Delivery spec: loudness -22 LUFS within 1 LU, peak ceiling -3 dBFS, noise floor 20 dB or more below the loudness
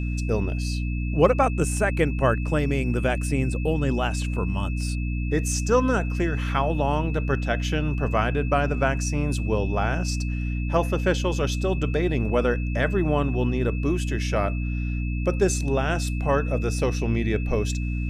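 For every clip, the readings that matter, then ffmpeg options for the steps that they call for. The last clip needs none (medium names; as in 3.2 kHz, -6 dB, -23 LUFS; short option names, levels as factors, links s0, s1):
hum 60 Hz; highest harmonic 300 Hz; hum level -24 dBFS; steady tone 2.6 kHz; tone level -39 dBFS; loudness -24.5 LUFS; peak level -5.0 dBFS; loudness target -22.0 LUFS
-> -af "bandreject=f=60:t=h:w=4,bandreject=f=120:t=h:w=4,bandreject=f=180:t=h:w=4,bandreject=f=240:t=h:w=4,bandreject=f=300:t=h:w=4"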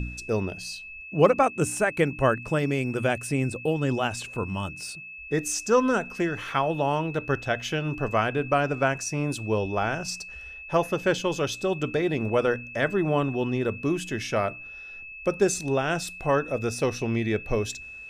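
hum not found; steady tone 2.6 kHz; tone level -39 dBFS
-> -af "bandreject=f=2600:w=30"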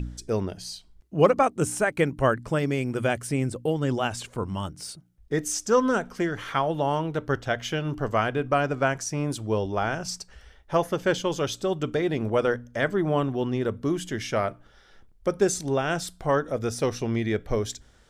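steady tone not found; loudness -26.5 LUFS; peak level -6.0 dBFS; loudness target -22.0 LUFS
-> -af "volume=1.68,alimiter=limit=0.708:level=0:latency=1"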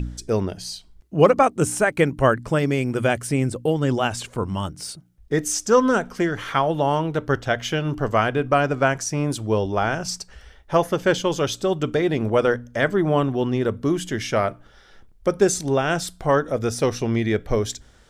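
loudness -22.0 LUFS; peak level -3.0 dBFS; noise floor -51 dBFS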